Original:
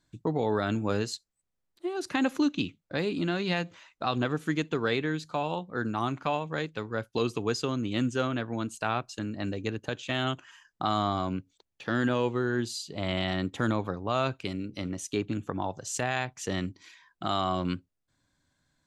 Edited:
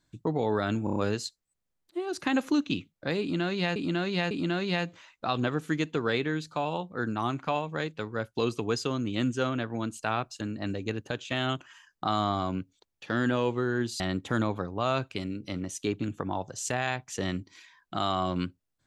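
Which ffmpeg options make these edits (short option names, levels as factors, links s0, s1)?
-filter_complex "[0:a]asplit=8[s0][s1][s2][s3][s4][s5][s6][s7];[s0]atrim=end=0.872[s8];[s1]atrim=start=0.838:end=0.872[s9];[s2]atrim=start=0.838:end=0.872[s10];[s3]atrim=start=0.838:end=0.872[s11];[s4]atrim=start=0.838:end=3.642[s12];[s5]atrim=start=3.088:end=3.642[s13];[s6]atrim=start=3.088:end=12.782[s14];[s7]atrim=start=13.288[s15];[s8][s9]acrossfade=d=0.004:c1=hsin:c2=hsin[s16];[s16][s10]acrossfade=d=0.004:c1=hsin:c2=hsin[s17];[s17][s11]acrossfade=d=0.004:c1=hsin:c2=hsin[s18];[s18][s12]acrossfade=d=0.004:c1=hsin:c2=hsin[s19];[s19][s13]acrossfade=d=0.004:c1=hsin:c2=hsin[s20];[s20][s14]acrossfade=d=0.004:c1=hsin:c2=hsin[s21];[s21][s15]acrossfade=d=0.004:c1=hsin:c2=hsin"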